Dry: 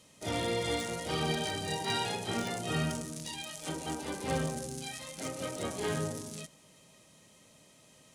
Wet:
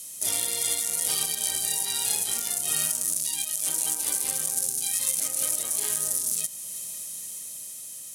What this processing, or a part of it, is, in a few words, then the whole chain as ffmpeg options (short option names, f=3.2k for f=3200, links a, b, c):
FM broadcast chain: -filter_complex "[0:a]highpass=57,dynaudnorm=f=360:g=7:m=4.5dB,acrossover=split=540|3800[a][b][c];[a]acompressor=threshold=-43dB:ratio=4[d];[b]acompressor=threshold=-37dB:ratio=4[e];[c]acompressor=threshold=-41dB:ratio=4[f];[d][e][f]amix=inputs=3:normalize=0,aemphasis=mode=production:type=75fm,alimiter=limit=-19.5dB:level=0:latency=1:release=422,asoftclip=type=hard:threshold=-23.5dB,lowpass=f=15k:w=0.5412,lowpass=f=15k:w=1.3066,aemphasis=mode=production:type=75fm"